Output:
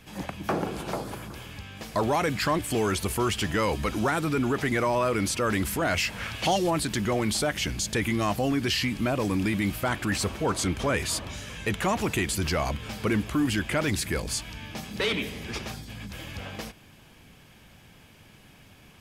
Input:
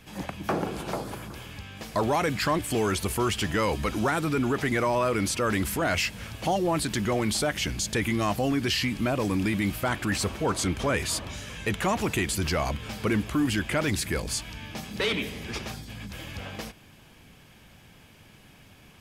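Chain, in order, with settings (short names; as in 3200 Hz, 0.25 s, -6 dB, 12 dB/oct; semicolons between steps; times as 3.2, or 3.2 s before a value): 6.08–6.69 bell 900 Hz -> 7700 Hz +9.5 dB 2.6 oct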